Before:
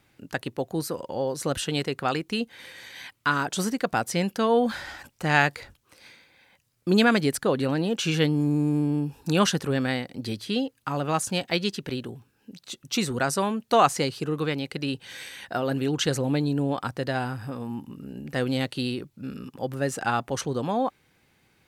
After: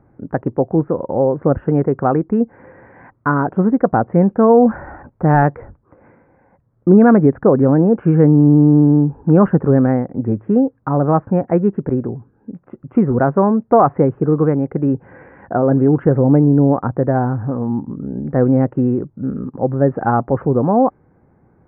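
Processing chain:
in parallel at −8 dB: wrap-around overflow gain 7 dB
on the sum: Gaussian smoothing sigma 7.9 samples
boost into a limiter +12 dB
level −1 dB

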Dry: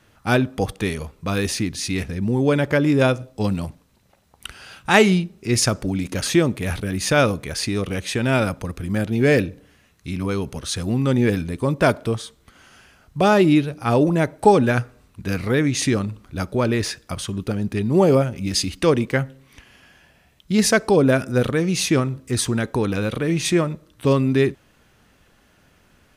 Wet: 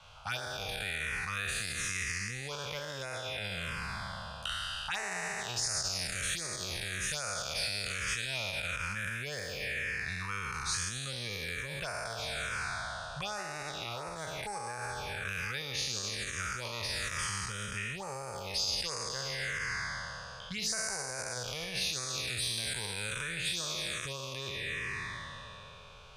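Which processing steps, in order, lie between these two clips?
peak hold with a decay on every bin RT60 2.96 s
low-shelf EQ 220 Hz −4.5 dB
low-pass that shuts in the quiet parts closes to 2,500 Hz, open at −12 dBFS
phaser swept by the level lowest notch 310 Hz, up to 3,300 Hz, full sweep at −9.5 dBFS
downward compressor 5 to 1, threshold −28 dBFS, peak gain reduction 18.5 dB
brickwall limiter −23 dBFS, peak gain reduction 8.5 dB
guitar amp tone stack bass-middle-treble 10-0-10
multiband upward and downward compressor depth 40%
level +5.5 dB

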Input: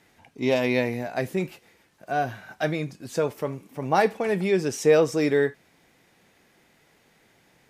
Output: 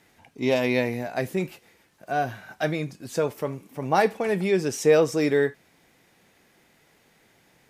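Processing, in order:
high-shelf EQ 9,400 Hz +3.5 dB

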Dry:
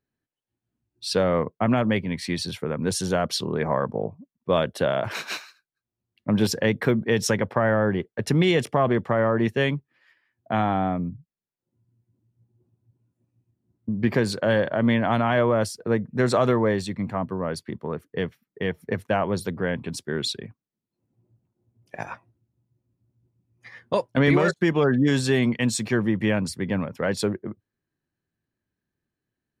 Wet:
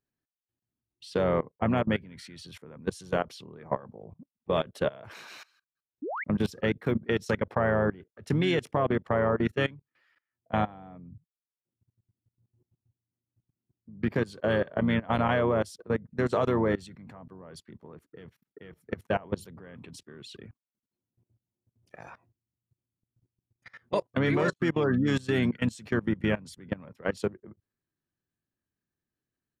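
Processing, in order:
pitch-shifted copies added −5 semitones −10 dB
output level in coarse steps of 22 dB
sound drawn into the spectrogram rise, 0:06.02–0:06.24, 250–2,400 Hz −31 dBFS
level −2.5 dB

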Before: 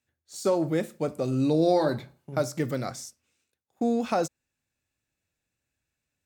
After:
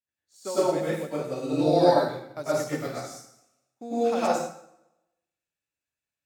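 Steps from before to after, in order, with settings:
low-shelf EQ 310 Hz −8 dB
dense smooth reverb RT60 1 s, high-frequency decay 0.85×, pre-delay 85 ms, DRR −9 dB
expander for the loud parts 1.5 to 1, over −39 dBFS
level −2.5 dB

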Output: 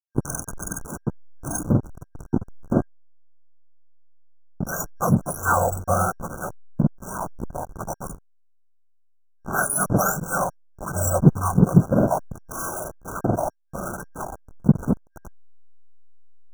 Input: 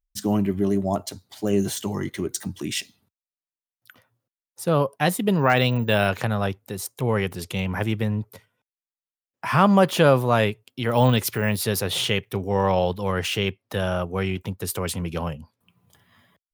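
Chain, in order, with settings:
frequency axis turned over on the octave scale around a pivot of 1,400 Hz
slack as between gear wheels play −18.5 dBFS
brick-wall band-stop 1,600–5,600 Hz
level +5.5 dB

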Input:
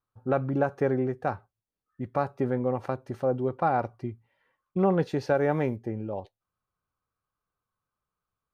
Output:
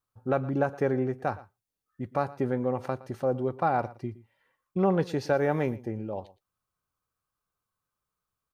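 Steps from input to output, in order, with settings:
high-shelf EQ 4,000 Hz +6.5 dB
single-tap delay 116 ms −19 dB
level −1 dB

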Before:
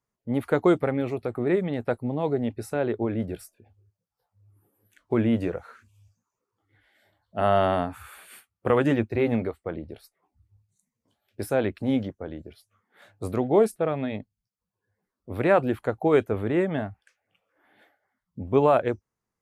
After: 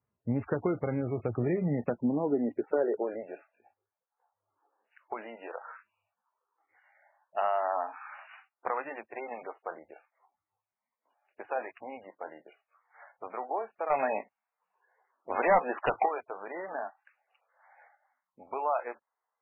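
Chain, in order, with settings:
high-shelf EQ 2,300 Hz −5 dB
downward compressor 4 to 1, threshold −28 dBFS, peak gain reduction 11.5 dB
high-pass filter sweep 86 Hz → 830 Hz, 0:01.14–0:03.54
0:13.90–0:16.06: sine wavefolder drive 7 dB, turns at −17.5 dBFS
MP3 8 kbit/s 11,025 Hz

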